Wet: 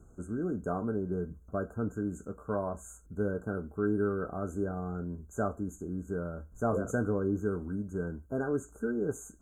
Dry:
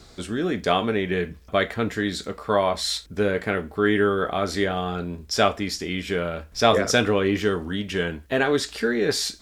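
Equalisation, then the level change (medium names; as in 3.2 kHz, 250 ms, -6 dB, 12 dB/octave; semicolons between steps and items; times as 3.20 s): brick-wall FIR band-stop 1.6–6.2 kHz; peaking EQ 890 Hz -10 dB 2.2 oct; treble shelf 3.4 kHz -11.5 dB; -4.5 dB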